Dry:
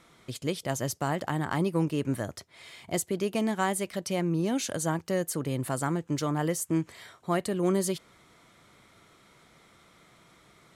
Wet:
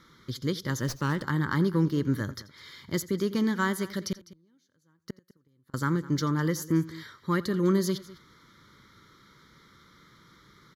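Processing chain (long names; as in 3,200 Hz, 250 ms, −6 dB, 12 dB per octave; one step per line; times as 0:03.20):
0:04.12–0:05.74: gate with flip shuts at −22 dBFS, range −39 dB
harmonic generator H 5 −29 dB, 7 −32 dB, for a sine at −13.5 dBFS
phaser with its sweep stopped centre 2,600 Hz, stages 6
multi-tap delay 85/203 ms −19.5/−19 dB
0:00.80–0:01.23: windowed peak hold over 3 samples
level +4 dB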